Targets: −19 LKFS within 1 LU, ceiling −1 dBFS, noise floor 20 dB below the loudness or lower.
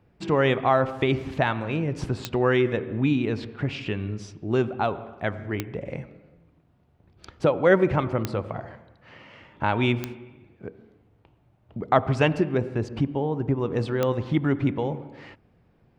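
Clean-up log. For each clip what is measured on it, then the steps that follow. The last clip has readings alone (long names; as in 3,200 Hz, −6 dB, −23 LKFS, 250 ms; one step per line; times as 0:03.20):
number of clicks 5; integrated loudness −25.0 LKFS; sample peak −5.0 dBFS; target loudness −19.0 LKFS
→ click removal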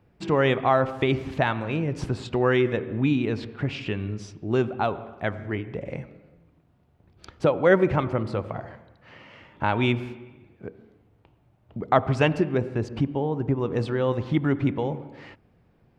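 number of clicks 0; integrated loudness −25.0 LKFS; sample peak −5.0 dBFS; target loudness −19.0 LKFS
→ level +6 dB
brickwall limiter −1 dBFS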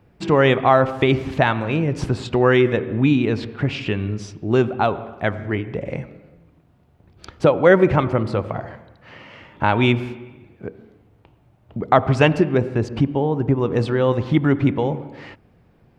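integrated loudness −19.5 LKFS; sample peak −1.0 dBFS; background noise floor −56 dBFS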